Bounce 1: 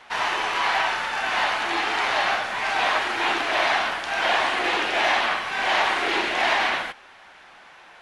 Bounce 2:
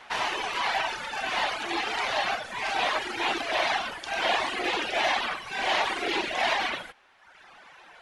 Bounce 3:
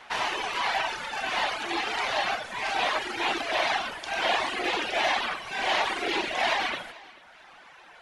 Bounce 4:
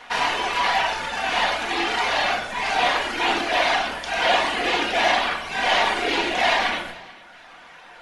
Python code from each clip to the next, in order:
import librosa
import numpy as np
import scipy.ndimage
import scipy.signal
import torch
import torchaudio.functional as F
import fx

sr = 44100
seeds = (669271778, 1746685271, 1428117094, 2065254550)

y1 = fx.dynamic_eq(x, sr, hz=1400.0, q=1.0, threshold_db=-33.0, ratio=4.0, max_db=-5)
y1 = fx.dereverb_blind(y1, sr, rt60_s=1.2)
y2 = fx.echo_feedback(y1, sr, ms=439, feedback_pct=28, wet_db=-21.0)
y3 = fx.room_shoebox(y2, sr, seeds[0], volume_m3=650.0, walls='furnished', distance_m=1.8)
y3 = F.gain(torch.from_numpy(y3), 4.0).numpy()